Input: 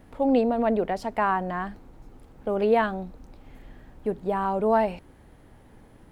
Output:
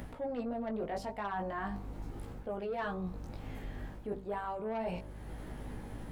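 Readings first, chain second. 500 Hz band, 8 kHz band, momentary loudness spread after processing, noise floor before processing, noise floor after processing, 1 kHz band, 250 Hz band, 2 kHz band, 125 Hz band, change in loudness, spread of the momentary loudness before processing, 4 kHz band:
−13.5 dB, can't be measured, 9 LU, −53 dBFS, −47 dBFS, −12.5 dB, −12.5 dB, −10.5 dB, −4.0 dB, −14.0 dB, 14 LU, −9.0 dB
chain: chorus effect 0.37 Hz, delay 16 ms, depth 4 ms
in parallel at −1.5 dB: upward compression, threshold −28 dBFS
on the sum: soft clipping −13.5 dBFS, distortion −16 dB
hum removal 65.02 Hz, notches 19
mains hum 50 Hz, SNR 17 dB
reversed playback
downward compressor 10 to 1, threshold −30 dBFS, peak gain reduction 13.5 dB
reversed playback
level −4 dB

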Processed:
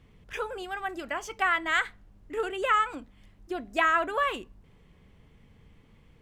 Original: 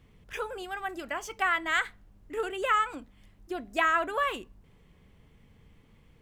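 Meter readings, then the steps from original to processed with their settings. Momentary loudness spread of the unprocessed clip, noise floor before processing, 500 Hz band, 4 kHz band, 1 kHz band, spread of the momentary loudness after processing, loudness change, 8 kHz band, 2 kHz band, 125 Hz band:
14 LU, −60 dBFS, +1.5 dB, +1.0 dB, +1.5 dB, 14 LU, +1.5 dB, −0.5 dB, +1.5 dB, can't be measured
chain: high-shelf EQ 10,000 Hz −7.5 dB
level +1.5 dB

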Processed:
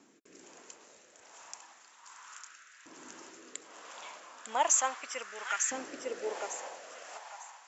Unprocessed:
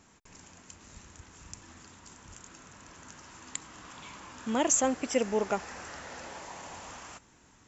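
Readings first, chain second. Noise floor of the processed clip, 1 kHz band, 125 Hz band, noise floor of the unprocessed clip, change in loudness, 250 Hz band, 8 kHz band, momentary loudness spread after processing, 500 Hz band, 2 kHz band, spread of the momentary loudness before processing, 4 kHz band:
−60 dBFS, +1.0 dB, below −20 dB, −61 dBFS, −1.5 dB, −15.5 dB, can't be measured, 24 LU, −6.5 dB, +1.5 dB, 24 LU, −1.0 dB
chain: feedback echo with a high-pass in the loop 901 ms, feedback 32%, high-pass 980 Hz, level −6 dB
rotating-speaker cabinet horn 1.2 Hz
auto-filter high-pass saw up 0.35 Hz 280–1,700 Hz

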